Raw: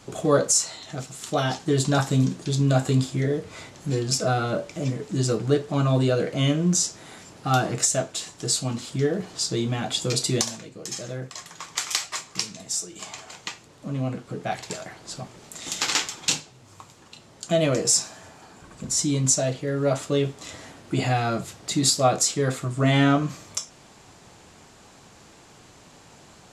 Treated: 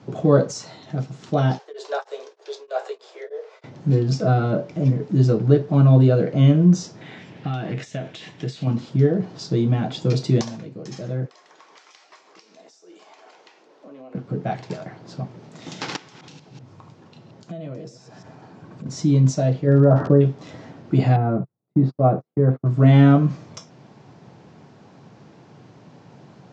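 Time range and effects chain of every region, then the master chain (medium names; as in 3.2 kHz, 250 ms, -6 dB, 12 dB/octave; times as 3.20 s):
1.58–3.64 s: steep high-pass 410 Hz 72 dB/octave + tremolo of two beating tones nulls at 3.2 Hz
7.01–8.67 s: high-order bell 2.5 kHz +10.5 dB 1.3 oct + compression 10:1, threshold -27 dBFS + companded quantiser 8-bit
11.25–14.15 s: high-pass 360 Hz 24 dB/octave + compression 4:1, threshold -43 dBFS
15.96–18.86 s: chunks repeated in reverse 126 ms, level -11 dB + compression 4:1, threshold -39 dBFS
19.66–20.20 s: brick-wall FIR low-pass 1.9 kHz + crackle 190 per s -34 dBFS + level flattener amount 50%
21.16–22.66 s: low-pass 1.1 kHz + gate -35 dBFS, range -41 dB
whole clip: Chebyshev band-pass 130–5800 Hz, order 3; tilt EQ -3.5 dB/octave; band-stop 1.2 kHz, Q 23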